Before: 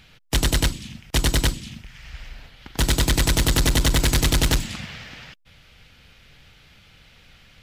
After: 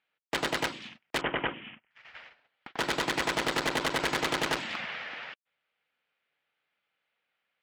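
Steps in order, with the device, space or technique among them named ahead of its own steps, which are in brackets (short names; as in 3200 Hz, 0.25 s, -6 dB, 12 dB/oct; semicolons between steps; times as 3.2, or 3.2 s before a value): walkie-talkie (BPF 520–2300 Hz; hard clip -28 dBFS, distortion -6 dB; gate -48 dBFS, range -28 dB); 1.21–1.91 steep low-pass 3200 Hz 96 dB/oct; gain +4.5 dB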